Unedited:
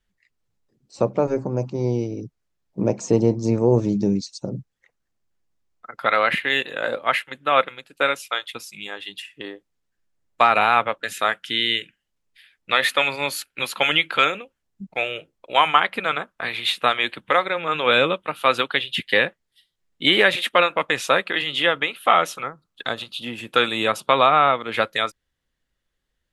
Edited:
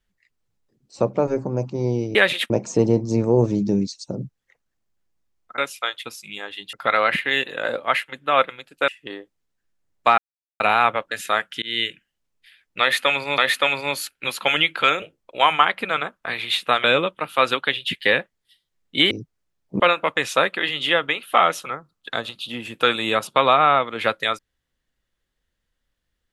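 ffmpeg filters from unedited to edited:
-filter_complex "[0:a]asplit=13[s0][s1][s2][s3][s4][s5][s6][s7][s8][s9][s10][s11][s12];[s0]atrim=end=2.152[s13];[s1]atrim=start=20.178:end=20.532[s14];[s2]atrim=start=2.838:end=5.922[s15];[s3]atrim=start=8.068:end=9.222[s16];[s4]atrim=start=5.918:end=8.072[s17];[s5]atrim=start=9.218:end=10.52,asetpts=PTS-STARTPTS,afade=t=out:st=1.298:d=0.004:c=hsin,apad=pad_dur=0.42[s18];[s6]atrim=start=10.52:end=11.54,asetpts=PTS-STARTPTS,afade=t=in:d=0.004:c=hsin,afade=t=out:st=1.016:d=0.004:c=hsin[s19];[s7]atrim=start=11.54:end=13.302,asetpts=PTS-STARTPTS,afade=t=in:d=0.26:c=qsin[s20];[s8]atrim=start=12.728:end=14.372[s21];[s9]atrim=start=15.168:end=16.992[s22];[s10]atrim=start=17.908:end=20.182[s23];[s11]atrim=start=2.148:end=2.842[s24];[s12]atrim=start=20.528[s25];[s13][s14]acrossfade=d=0.004:c1=hsin:c2=hsin[s26];[s26][s15]acrossfade=d=0.004:c1=hsin:c2=hsin[s27];[s27][s16]acrossfade=d=0.004:c1=hsin:c2=hsin[s28];[s28][s17]acrossfade=d=0.004:c1=hsin:c2=hsin[s29];[s18][s19][s20]concat=n=3:v=0:a=1[s30];[s29][s30]acrossfade=d=0.004:c1=hsin:c2=hsin[s31];[s31][s21]acrossfade=d=0.004:c1=hsin:c2=hsin[s32];[s32][s22]acrossfade=d=0.004:c1=hsin:c2=hsin[s33];[s33][s23]acrossfade=d=0.004:c1=hsin:c2=hsin[s34];[s34][s24]acrossfade=d=0.004:c1=hsin:c2=hsin[s35];[s35][s25]acrossfade=d=0.004:c1=hsin:c2=hsin"

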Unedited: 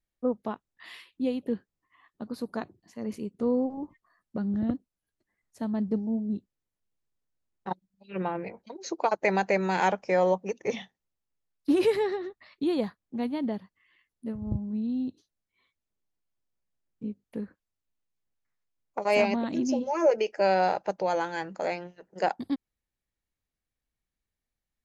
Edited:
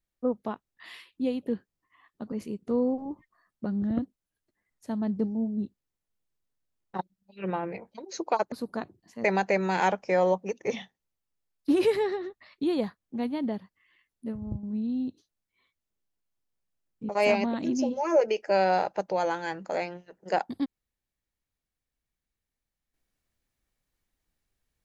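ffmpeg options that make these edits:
-filter_complex "[0:a]asplit=6[s0][s1][s2][s3][s4][s5];[s0]atrim=end=2.322[s6];[s1]atrim=start=3.038:end=9.242[s7];[s2]atrim=start=2.318:end=3.042[s8];[s3]atrim=start=9.238:end=14.63,asetpts=PTS-STARTPTS,afade=t=out:st=5.132:d=0.26:silence=0.398107[s9];[s4]atrim=start=14.63:end=17.092,asetpts=PTS-STARTPTS,afade=t=in:d=0.004:c=hsin:silence=0.398107[s10];[s5]atrim=start=18.988[s11];[s6][s7]acrossfade=d=0.004:c1=hsin:c2=hsin[s12];[s12][s8]acrossfade=d=0.004:c1=hsin:c2=hsin[s13];[s9][s10]concat=n=2:v=0:a=1[s14];[s13][s14]acrossfade=d=0.004:c1=hsin:c2=hsin[s15];[s15][s11]acrossfade=d=0.004:c1=hsin:c2=hsin"

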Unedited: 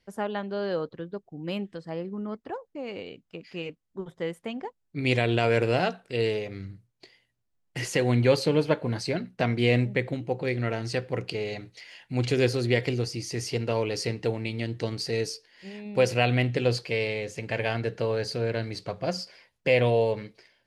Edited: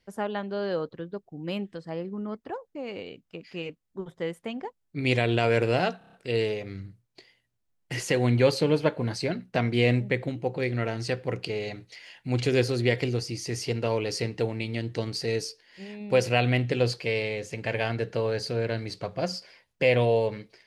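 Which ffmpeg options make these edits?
-filter_complex "[0:a]asplit=6[s0][s1][s2][s3][s4][s5];[s0]atrim=end=6.012[s6];[s1]atrim=start=5.978:end=6.012[s7];[s2]atrim=start=5.978:end=6.012[s8];[s3]atrim=start=5.978:end=6.012[s9];[s4]atrim=start=5.978:end=6.012[s10];[s5]atrim=start=5.978[s11];[s6][s7]acrossfade=d=0.004:c1=hsin:c2=hsin[s12];[s12][s8]acrossfade=d=0.004:c1=hsin:c2=hsin[s13];[s13][s9]acrossfade=d=0.004:c1=hsin:c2=hsin[s14];[s14][s10]acrossfade=d=0.004:c1=hsin:c2=hsin[s15];[s15][s11]acrossfade=d=0.004:c1=hsin:c2=hsin"

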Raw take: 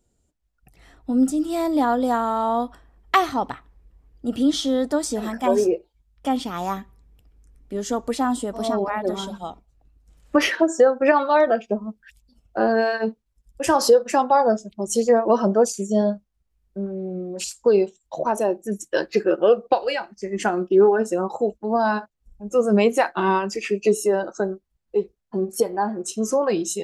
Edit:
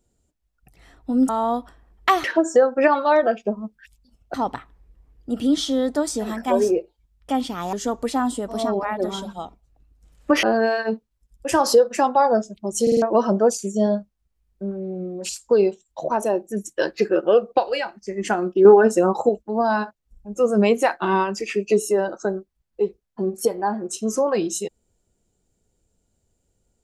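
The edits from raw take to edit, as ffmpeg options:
-filter_complex "[0:a]asplit=12[s0][s1][s2][s3][s4][s5][s6][s7][s8][s9][s10][s11];[s0]atrim=end=1.292[s12];[s1]atrim=start=2.348:end=3.302[s13];[s2]atrim=start=10.478:end=12.582[s14];[s3]atrim=start=3.298:end=6.692[s15];[s4]atrim=start=7.778:end=10.482[s16];[s5]atrim=start=12.578:end=15.022[s17];[s6]atrim=start=14.968:end=15.022[s18];[s7]atrim=start=14.968:end=15.022[s19];[s8]atrim=start=14.968:end=15.022[s20];[s9]atrim=start=15.168:end=20.802[s21];[s10]atrim=start=20.798:end=21.442,asetpts=PTS-STARTPTS,volume=1.88[s22];[s11]atrim=start=21.438[s23];[s12][s13]acrossfade=d=0.004:c1=hsin:c2=hsin[s24];[s24][s14]acrossfade=d=0.004:c1=hsin:c2=hsin[s25];[s25][s15]acrossfade=d=0.004:c1=hsin:c2=hsin[s26];[s26][s16]acrossfade=d=0.004:c1=hsin:c2=hsin[s27];[s27][s17]acrossfade=d=0.004:c1=hsin:c2=hsin[s28];[s28][s18]acrossfade=d=0.004:c1=hsin:c2=hsin[s29];[s29][s19]acrossfade=d=0.004:c1=hsin:c2=hsin[s30];[s30][s20]acrossfade=d=0.004:c1=hsin:c2=hsin[s31];[s31][s21]acrossfade=d=0.004:c1=hsin:c2=hsin[s32];[s32][s22]acrossfade=d=0.004:c1=hsin:c2=hsin[s33];[s33][s23]acrossfade=d=0.004:c1=hsin:c2=hsin"

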